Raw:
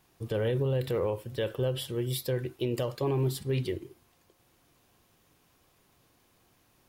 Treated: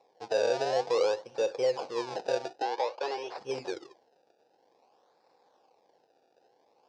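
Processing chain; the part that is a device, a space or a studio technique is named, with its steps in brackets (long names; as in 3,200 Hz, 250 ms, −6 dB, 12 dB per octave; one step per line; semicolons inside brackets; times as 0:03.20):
circuit-bent sampling toy (sample-and-hold swept by an LFO 28×, swing 100% 0.52 Hz; loudspeaker in its box 470–5,800 Hz, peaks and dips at 490 Hz +9 dB, 800 Hz +9 dB, 1,300 Hz −7 dB, 2,000 Hz −8 dB, 3,100 Hz −5 dB, 5,100 Hz +5 dB)
0:02.62–0:03.38: three-way crossover with the lows and the highs turned down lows −21 dB, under 400 Hz, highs −16 dB, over 5,500 Hz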